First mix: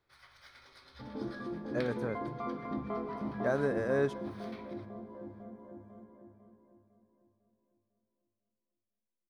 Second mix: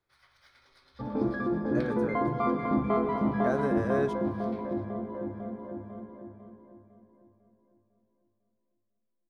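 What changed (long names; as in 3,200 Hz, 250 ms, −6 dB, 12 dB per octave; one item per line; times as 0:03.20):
first sound −4.5 dB
second sound +10.5 dB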